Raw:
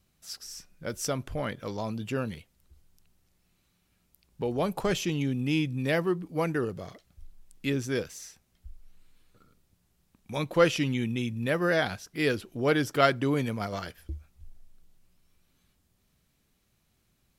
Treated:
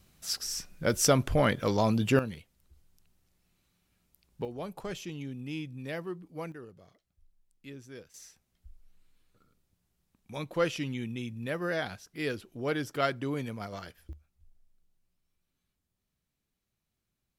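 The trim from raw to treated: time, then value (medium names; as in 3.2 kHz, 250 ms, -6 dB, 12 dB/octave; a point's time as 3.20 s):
+7.5 dB
from 2.19 s -2.5 dB
from 4.45 s -10.5 dB
from 6.52 s -17 dB
from 8.14 s -6.5 dB
from 14.13 s -13 dB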